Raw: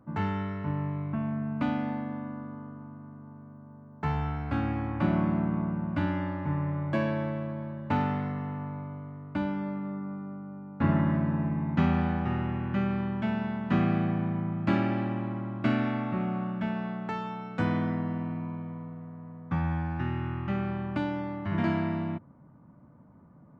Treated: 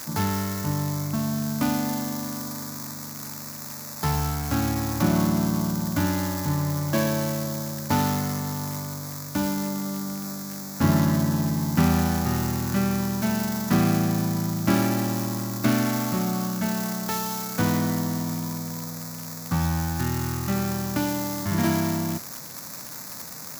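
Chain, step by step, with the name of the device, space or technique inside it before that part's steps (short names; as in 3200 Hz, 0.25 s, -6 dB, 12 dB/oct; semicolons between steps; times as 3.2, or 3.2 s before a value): budget class-D amplifier (switching dead time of 0.17 ms; switching spikes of -20.5 dBFS); gain +4.5 dB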